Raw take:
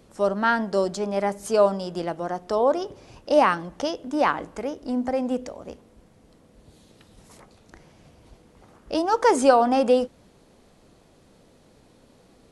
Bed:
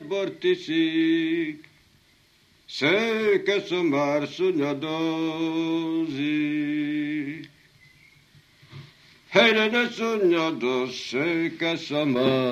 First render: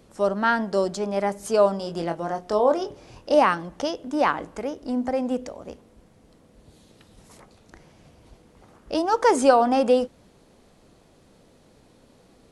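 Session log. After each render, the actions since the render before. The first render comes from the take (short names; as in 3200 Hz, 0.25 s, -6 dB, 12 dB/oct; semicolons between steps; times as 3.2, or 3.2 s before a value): 1.77–3.35 doubler 24 ms -7 dB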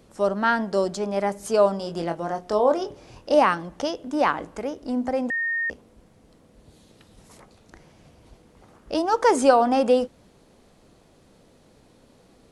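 5.3–5.7 bleep 1840 Hz -22.5 dBFS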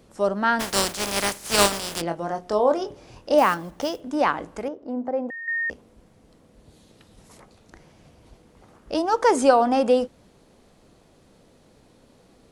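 0.59–2 spectral contrast lowered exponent 0.32; 3.38–4.02 block floating point 5-bit; 4.68–5.48 band-pass 490 Hz, Q 0.8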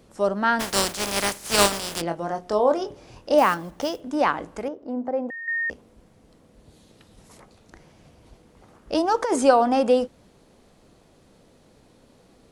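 8.92–9.36 negative-ratio compressor -19 dBFS, ratio -0.5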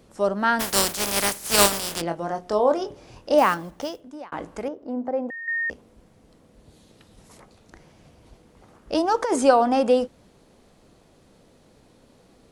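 0.39–1.92 bell 16000 Hz +11 dB; 3.6–4.32 fade out linear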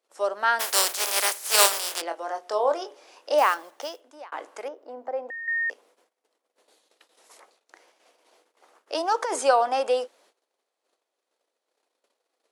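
gate -52 dBFS, range -21 dB; Bessel high-pass 610 Hz, order 6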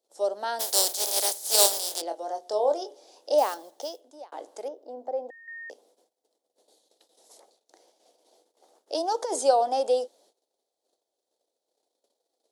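band shelf 1700 Hz -14.5 dB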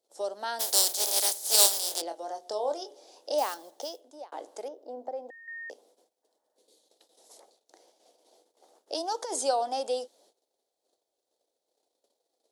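6.25–6.8 spectral repair 580–2000 Hz after; dynamic EQ 520 Hz, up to -7 dB, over -36 dBFS, Q 0.74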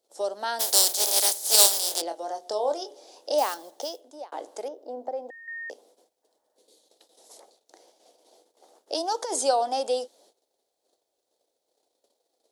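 gain +4 dB; limiter -2 dBFS, peak gain reduction 1.5 dB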